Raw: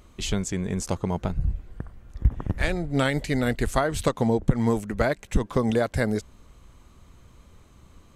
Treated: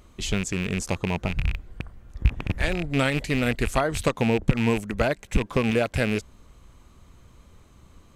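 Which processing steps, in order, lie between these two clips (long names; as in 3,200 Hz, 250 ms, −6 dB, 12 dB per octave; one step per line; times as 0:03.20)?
loose part that buzzes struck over −26 dBFS, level −19 dBFS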